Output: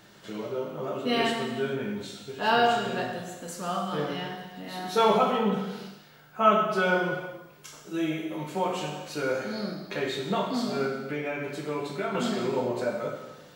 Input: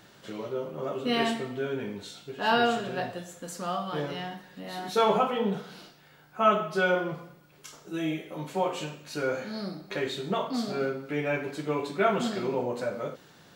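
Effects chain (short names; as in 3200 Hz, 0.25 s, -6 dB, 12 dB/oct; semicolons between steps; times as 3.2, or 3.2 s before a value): 10.85–12.15 compressor, threshold -29 dBFS, peak gain reduction 10 dB; non-linear reverb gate 0.45 s falling, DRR 2.5 dB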